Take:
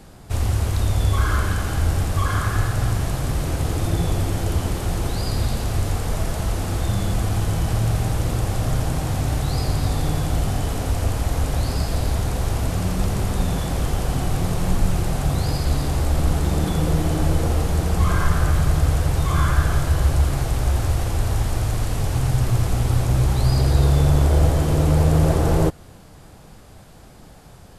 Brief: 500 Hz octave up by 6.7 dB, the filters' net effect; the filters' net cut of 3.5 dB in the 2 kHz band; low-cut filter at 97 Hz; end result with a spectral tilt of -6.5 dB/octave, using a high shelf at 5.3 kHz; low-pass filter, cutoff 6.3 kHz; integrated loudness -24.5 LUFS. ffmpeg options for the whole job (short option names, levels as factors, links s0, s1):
-af "highpass=97,lowpass=6300,equalizer=f=500:t=o:g=8.5,equalizer=f=2000:t=o:g=-6,highshelf=f=5300:g=4,volume=0.841"